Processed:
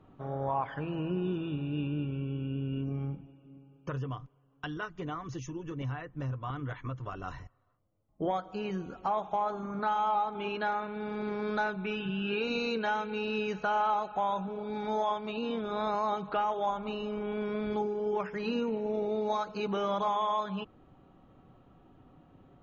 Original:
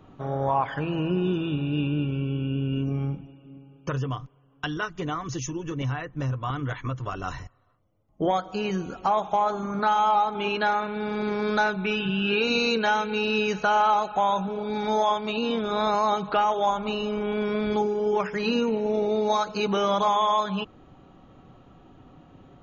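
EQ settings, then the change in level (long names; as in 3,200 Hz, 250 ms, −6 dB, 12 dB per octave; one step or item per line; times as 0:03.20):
low-pass filter 2,600 Hz 6 dB per octave
−7.0 dB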